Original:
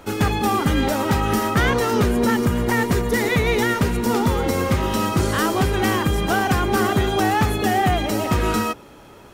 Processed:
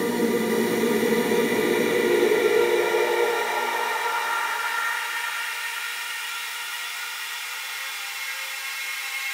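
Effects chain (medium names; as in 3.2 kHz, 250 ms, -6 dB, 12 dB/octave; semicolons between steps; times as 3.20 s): random holes in the spectrogram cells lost 24%; bass shelf 410 Hz -6 dB; peak limiter -18.5 dBFS, peak gain reduction 7 dB; Paulstretch 6.2×, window 1.00 s, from 3.09 s; high-pass sweep 250 Hz -> 2.2 kHz, 1.65–5.25 s; two-band feedback delay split 580 Hz, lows 191 ms, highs 497 ms, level -3 dB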